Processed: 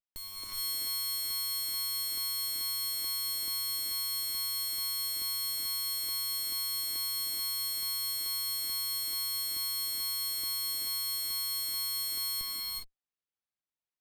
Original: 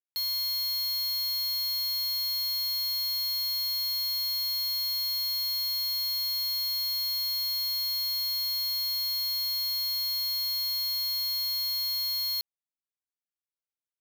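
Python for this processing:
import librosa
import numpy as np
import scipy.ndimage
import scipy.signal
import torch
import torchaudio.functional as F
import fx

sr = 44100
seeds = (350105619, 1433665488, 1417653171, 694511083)

y = fx.filter_lfo_notch(x, sr, shape='saw_up', hz=2.3, low_hz=300.0, high_hz=2900.0, q=2.2)
y = fx.rev_gated(y, sr, seeds[0], gate_ms=440, shape='rising', drr_db=-3.5)
y = fx.running_max(y, sr, window=5)
y = F.gain(torch.from_numpy(y), -7.5).numpy()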